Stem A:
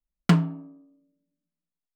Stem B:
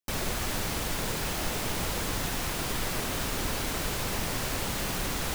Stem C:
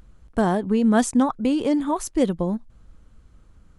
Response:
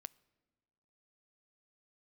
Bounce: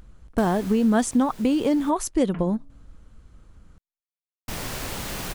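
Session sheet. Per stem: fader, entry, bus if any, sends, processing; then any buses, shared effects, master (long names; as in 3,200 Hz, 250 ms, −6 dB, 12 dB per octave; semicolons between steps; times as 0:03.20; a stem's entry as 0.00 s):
−15.5 dB, 2.05 s, no send, Butterworth low-pass 2,800 Hz
−0.5 dB, 0.30 s, muted 0:01.90–0:04.48, no send, automatic ducking −15 dB, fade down 1.10 s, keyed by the third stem
+2.0 dB, 0.00 s, no send, no processing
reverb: not used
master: downward compressor 2 to 1, threshold −19 dBFS, peak gain reduction 5 dB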